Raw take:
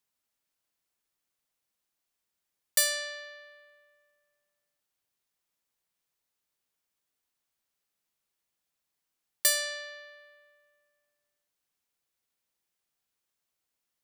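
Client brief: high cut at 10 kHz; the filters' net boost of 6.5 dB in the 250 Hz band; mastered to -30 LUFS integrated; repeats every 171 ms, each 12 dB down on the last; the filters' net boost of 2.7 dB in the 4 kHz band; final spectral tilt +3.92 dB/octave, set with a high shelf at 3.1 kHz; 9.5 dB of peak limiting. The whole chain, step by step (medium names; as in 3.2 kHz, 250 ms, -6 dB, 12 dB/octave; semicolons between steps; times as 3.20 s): low-pass 10 kHz; peaking EQ 250 Hz +8.5 dB; treble shelf 3.1 kHz -5 dB; peaking EQ 4 kHz +7 dB; peak limiter -23 dBFS; feedback delay 171 ms, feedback 25%, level -12 dB; trim +4 dB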